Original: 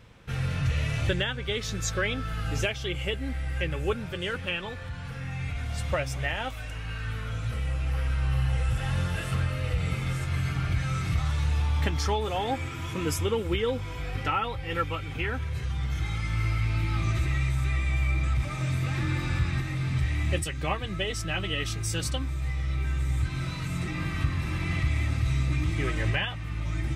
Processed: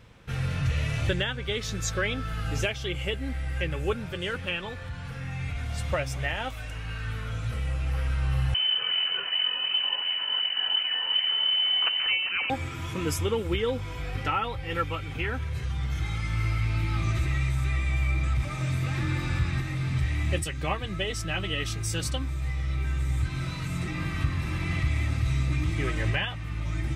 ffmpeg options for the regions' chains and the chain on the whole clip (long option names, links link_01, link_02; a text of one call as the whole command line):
ffmpeg -i in.wav -filter_complex "[0:a]asettb=1/sr,asplit=3[link_01][link_02][link_03];[link_01]atrim=end=8.544[link_04];[link_02]atrim=start=8.54:end=12.5,asetpts=PTS-STARTPTS,afade=type=in:duration=0.004:curve=qsin,afade=type=out:start_time=3.956:duration=0.004:curve=qsin,acrusher=samples=11:mix=1:aa=0.000001:lfo=1:lforange=17.6:lforate=2.7,lowpass=frequency=2600:width_type=q:width=0.5098,lowpass=frequency=2600:width_type=q:width=0.6013,lowpass=frequency=2600:width_type=q:width=0.9,lowpass=frequency=2600:width_type=q:width=2.563,afreqshift=-3100[link_05];[link_03]atrim=start=12.496[link_06];[link_04][link_05]acrossfade=duration=0.004:curve1=hsin:curve2=qsin[link_07];[link_07][link_06]acrossfade=duration=0.004:curve1=qsin:curve2=hsin" out.wav